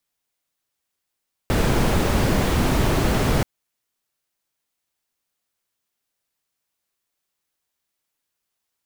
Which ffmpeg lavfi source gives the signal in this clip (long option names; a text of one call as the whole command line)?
ffmpeg -f lavfi -i "anoisesrc=color=brown:amplitude=0.556:duration=1.93:sample_rate=44100:seed=1" out.wav